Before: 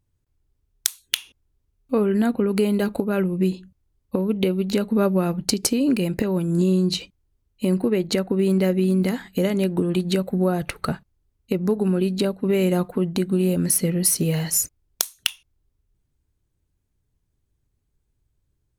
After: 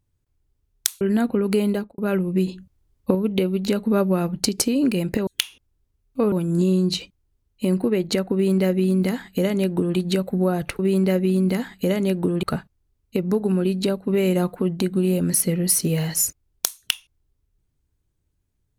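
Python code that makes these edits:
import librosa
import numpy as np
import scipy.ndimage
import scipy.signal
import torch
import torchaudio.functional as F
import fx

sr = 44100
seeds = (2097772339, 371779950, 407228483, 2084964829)

y = fx.studio_fade_out(x, sr, start_s=2.72, length_s=0.31)
y = fx.edit(y, sr, fx.move(start_s=1.01, length_s=1.05, to_s=6.32),
    fx.clip_gain(start_s=3.53, length_s=0.67, db=4.0),
    fx.duplicate(start_s=8.33, length_s=1.64, to_s=10.79), tone=tone)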